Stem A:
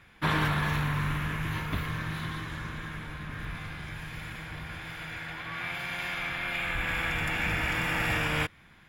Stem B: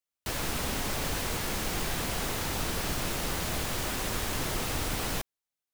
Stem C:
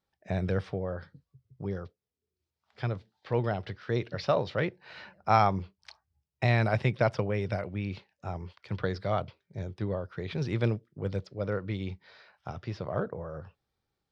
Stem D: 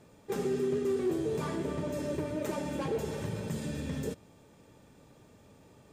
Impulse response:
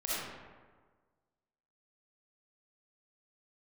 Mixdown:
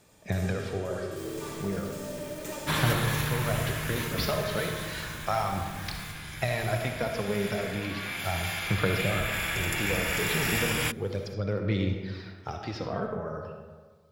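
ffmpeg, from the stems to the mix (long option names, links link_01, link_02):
-filter_complex "[0:a]bass=frequency=250:gain=1,treble=frequency=4000:gain=8,adelay=2450,volume=-3.5dB[link_01];[1:a]asoftclip=type=tanh:threshold=-38dB,adelay=900,volume=-17dB,asplit=2[link_02][link_03];[link_03]volume=-4.5dB[link_04];[2:a]acompressor=threshold=-31dB:ratio=6,aphaser=in_gain=1:out_gain=1:delay=4.8:decay=0.5:speed=0.34:type=sinusoidal,volume=0dB,asplit=3[link_05][link_06][link_07];[link_06]volume=-6.5dB[link_08];[3:a]equalizer=frequency=260:width_type=o:width=2.3:gain=-6.5,volume=-3dB,asplit=2[link_09][link_10];[link_10]volume=-6.5dB[link_11];[link_07]apad=whole_len=261347[link_12];[link_09][link_12]sidechaincompress=threshold=-42dB:ratio=8:attack=16:release=1250[link_13];[4:a]atrim=start_sample=2205[link_14];[link_04][link_08][link_11]amix=inputs=3:normalize=0[link_15];[link_15][link_14]afir=irnorm=-1:irlink=0[link_16];[link_01][link_02][link_05][link_13][link_16]amix=inputs=5:normalize=0,highshelf=frequency=3600:gain=8.5"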